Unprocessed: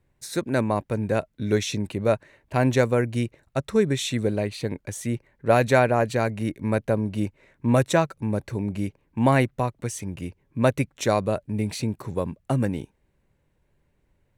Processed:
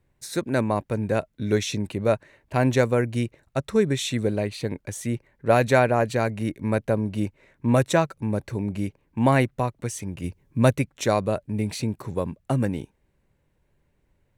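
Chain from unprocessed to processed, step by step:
0:10.24–0:10.75: bass and treble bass +5 dB, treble +6 dB

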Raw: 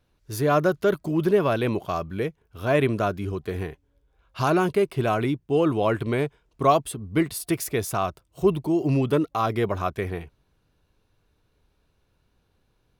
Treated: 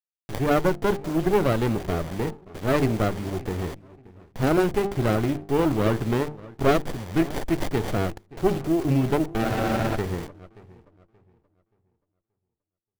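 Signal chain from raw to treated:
bit reduction 7 bits
high-shelf EQ 9,000 Hz +11.5 dB
mains-hum notches 50/100/150/200/250/300/350/400/450 Hz
feedback echo with a low-pass in the loop 578 ms, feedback 30%, low-pass 1,500 Hz, level −19.5 dB
frozen spectrum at 0:09.46, 0.50 s
windowed peak hold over 33 samples
level +1 dB

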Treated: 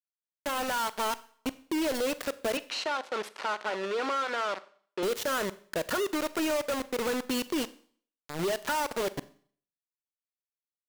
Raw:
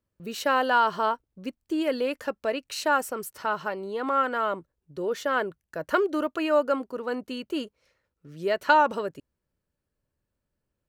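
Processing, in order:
fade in at the beginning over 2.76 s
gate on every frequency bin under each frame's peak −25 dB strong
downward compressor 20 to 1, threshold −31 dBFS, peak gain reduction 17 dB
log-companded quantiser 2 bits
0:02.57–0:05.03: band-pass filter 360–3,900 Hz
four-comb reverb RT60 0.51 s, combs from 30 ms, DRR 16 dB
level −1.5 dB

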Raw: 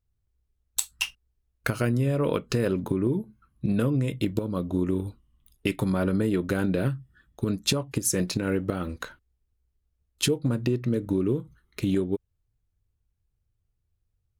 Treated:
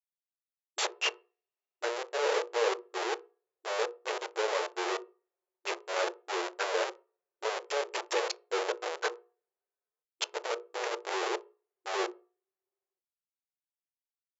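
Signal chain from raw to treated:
high-shelf EQ 2,900 Hz +4.5 dB
notch filter 3,800 Hz, Q 15
in parallel at −1 dB: brickwall limiter −17.5 dBFS, peak gain reduction 14 dB
on the sum: gate pattern "xx.xx..xx.x" 148 BPM −60 dB
comparator with hysteresis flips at −33.5 dBFS
bit reduction 9 bits
sine wavefolder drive 8 dB, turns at −19.5 dBFS
linear-phase brick-wall band-pass 350–7,600 Hz
mains-hum notches 60/120/180/240/300/360/420/480 Hz
on a send at −11.5 dB: convolution reverb RT60 0.30 s, pre-delay 3 ms
on the sum: level −5.5 dB

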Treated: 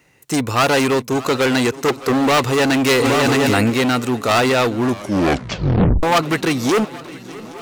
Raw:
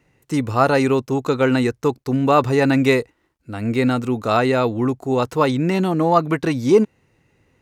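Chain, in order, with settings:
0:01.88–0:02.28: parametric band 460 Hz +13 dB 1.2 octaves
gain into a clipping stage and back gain 17.5 dB
spectral tilt +2 dB per octave
feedback echo with a long and a short gap by turns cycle 821 ms, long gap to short 3 to 1, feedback 57%, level −19 dB
0:02.95–0:03.70: envelope flattener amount 100%
0:04.84: tape stop 1.19 s
level +6.5 dB

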